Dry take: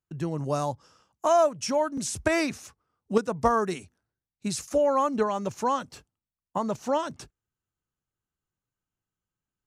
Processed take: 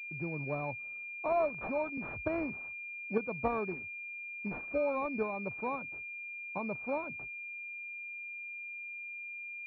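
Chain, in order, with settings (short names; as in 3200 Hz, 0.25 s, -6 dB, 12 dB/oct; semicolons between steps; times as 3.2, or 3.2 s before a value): 1.26–1.9 switching spikes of -27 dBFS; pulse-width modulation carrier 2400 Hz; gain -8.5 dB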